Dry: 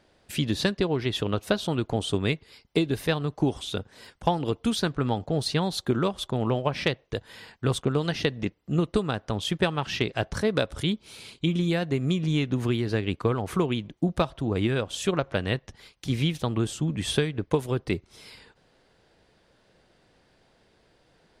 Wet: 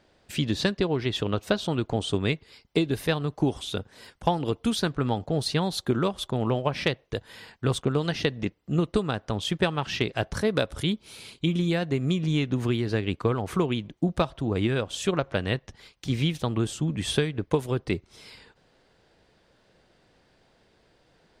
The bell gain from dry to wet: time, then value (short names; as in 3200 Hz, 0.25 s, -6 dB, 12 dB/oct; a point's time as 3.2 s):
bell 11000 Hz 0.22 oct
-14.5 dB
from 2.34 s -8 dB
from 2.91 s +2 dB
from 7.5 s -5 dB
from 9.99 s +4.5 dB
from 11.62 s -5.5 dB
from 15.55 s -12 dB
from 16.23 s -2.5 dB
from 17.81 s -9.5 dB